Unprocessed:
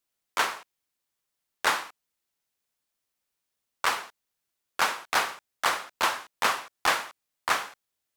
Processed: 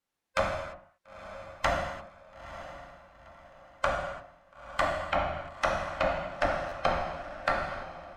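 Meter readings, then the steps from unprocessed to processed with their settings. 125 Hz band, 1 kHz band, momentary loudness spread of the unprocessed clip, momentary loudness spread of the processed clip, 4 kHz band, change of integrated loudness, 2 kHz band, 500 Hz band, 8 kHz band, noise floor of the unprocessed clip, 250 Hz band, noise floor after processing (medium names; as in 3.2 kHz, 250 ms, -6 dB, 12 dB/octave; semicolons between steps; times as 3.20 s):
+15.0 dB, -2.5 dB, 14 LU, 16 LU, -9.5 dB, -3.5 dB, -5.0 dB, +7.5 dB, -14.5 dB, -83 dBFS, +5.0 dB, -72 dBFS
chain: every band turned upside down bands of 500 Hz; low-pass that closes with the level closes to 580 Hz, closed at -25.5 dBFS; treble shelf 10 kHz -5.5 dB; echo that smears into a reverb 929 ms, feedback 43%, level -12 dB; gated-style reverb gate 370 ms falling, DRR 0 dB; buffer glitch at 6.68 s, samples 512, times 2; tape noise reduction on one side only decoder only; trim +2.5 dB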